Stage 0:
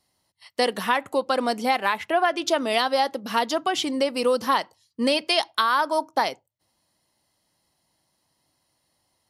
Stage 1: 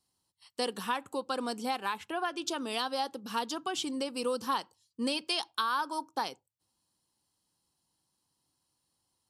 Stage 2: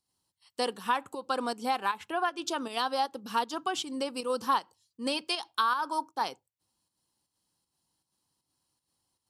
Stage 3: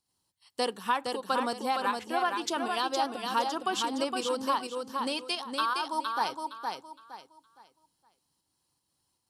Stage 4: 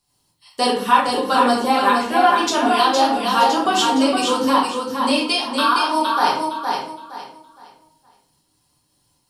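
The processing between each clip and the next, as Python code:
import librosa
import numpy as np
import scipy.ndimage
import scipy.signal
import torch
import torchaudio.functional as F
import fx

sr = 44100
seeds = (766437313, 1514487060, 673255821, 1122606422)

y1 = fx.graphic_eq_31(x, sr, hz=(630, 2000, 8000), db=(-12, -11, 7))
y1 = y1 * librosa.db_to_amplitude(-8.0)
y2 = fx.volume_shaper(y1, sr, bpm=157, per_beat=1, depth_db=-7, release_ms=90.0, shape='slow start')
y2 = fx.dynamic_eq(y2, sr, hz=1000.0, q=0.71, threshold_db=-41.0, ratio=4.0, max_db=5)
y3 = fx.rider(y2, sr, range_db=10, speed_s=0.5)
y3 = fx.echo_feedback(y3, sr, ms=464, feedback_pct=28, wet_db=-4.5)
y4 = fx.room_shoebox(y3, sr, seeds[0], volume_m3=68.0, walls='mixed', distance_m=1.3)
y4 = y4 * librosa.db_to_amplitude(7.0)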